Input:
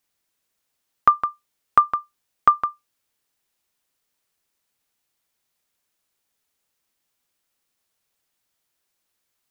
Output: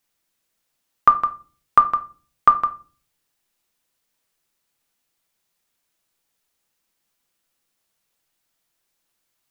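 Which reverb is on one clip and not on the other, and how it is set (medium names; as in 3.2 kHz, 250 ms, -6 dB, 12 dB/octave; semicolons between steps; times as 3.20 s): simulated room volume 270 m³, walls furnished, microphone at 0.75 m; trim +1 dB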